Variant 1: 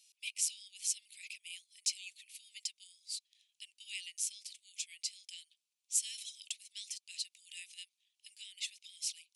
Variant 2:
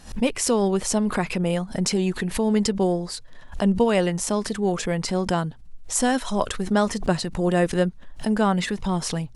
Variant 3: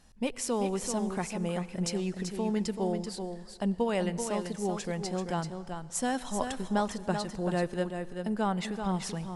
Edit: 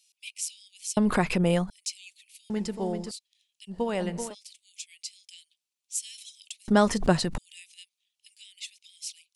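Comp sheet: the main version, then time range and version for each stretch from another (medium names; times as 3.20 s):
1
0.97–1.70 s: from 2
2.50–3.11 s: from 3
3.72–4.30 s: from 3, crossfade 0.10 s
6.68–7.38 s: from 2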